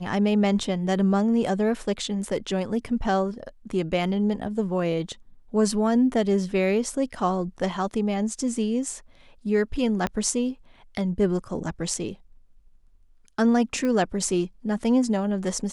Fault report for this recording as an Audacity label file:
10.070000	10.070000	click −13 dBFS
13.850000	13.850000	click −17 dBFS

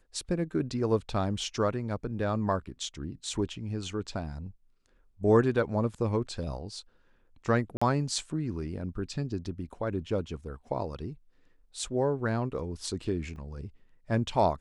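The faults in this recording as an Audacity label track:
7.770000	7.820000	drop-out 45 ms
13.360000	13.360000	drop-out 2.1 ms

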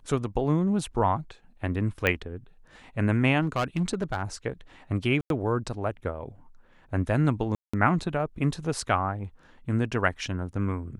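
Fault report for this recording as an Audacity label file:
2.070000	2.070000	click −11 dBFS
3.420000	4.230000	clipping −21 dBFS
5.210000	5.300000	drop-out 92 ms
7.550000	7.740000	drop-out 185 ms

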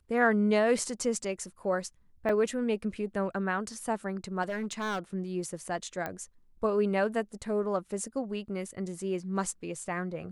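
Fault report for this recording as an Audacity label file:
2.290000	2.290000	drop-out 3.8 ms
4.420000	4.990000	clipping −28.5 dBFS
6.060000	6.060000	click −20 dBFS

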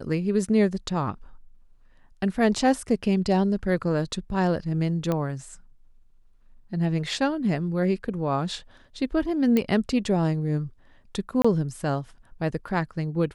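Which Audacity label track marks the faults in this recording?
5.120000	5.120000	click −14 dBFS
9.570000	9.570000	click −11 dBFS
11.420000	11.450000	drop-out 25 ms

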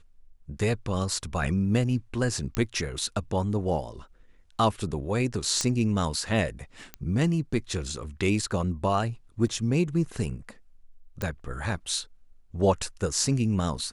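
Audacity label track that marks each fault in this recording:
2.550000	2.550000	click −13 dBFS
5.610000	5.610000	click −12 dBFS
6.940000	6.940000	click −19 dBFS
9.470000	9.470000	drop-out 2.4 ms
11.220000	11.220000	click

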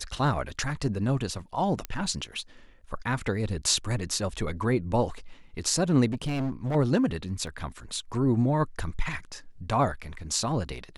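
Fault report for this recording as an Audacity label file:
1.850000	1.850000	click −16 dBFS
6.110000	6.760000	clipping −25.5 dBFS
7.470000	7.470000	drop-out 2.5 ms

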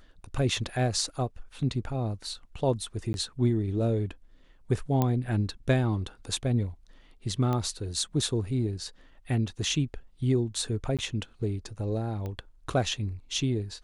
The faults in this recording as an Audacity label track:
3.130000	3.140000	drop-out 11 ms
5.020000	5.020000	click −13 dBFS
7.530000	7.530000	click −18 dBFS
10.970000	10.990000	drop-out 17 ms
12.260000	12.260000	click −24 dBFS

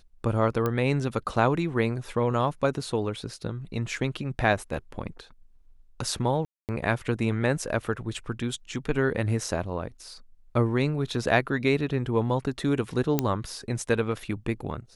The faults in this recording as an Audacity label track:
0.660000	0.660000	click −14 dBFS
6.450000	6.690000	drop-out 238 ms
13.190000	13.190000	click −8 dBFS

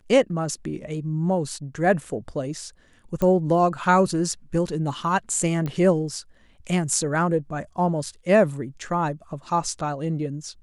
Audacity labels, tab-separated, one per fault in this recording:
3.220000	3.220000	click −13 dBFS
5.660000	5.660000	click −18 dBFS

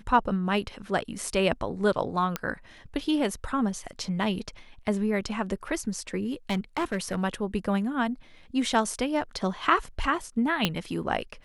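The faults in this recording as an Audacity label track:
2.360000	2.360000	click −12 dBFS
6.490000	7.190000	clipping −23 dBFS
10.650000	10.650000	click −8 dBFS

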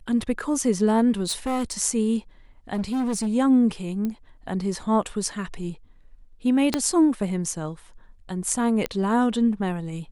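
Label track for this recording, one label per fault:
1.270000	1.730000	clipping −21.5 dBFS
2.730000	3.280000	clipping −22 dBFS
4.050000	4.050000	click −17 dBFS
6.740000	6.740000	click −7 dBFS
8.860000	8.860000	click −11 dBFS

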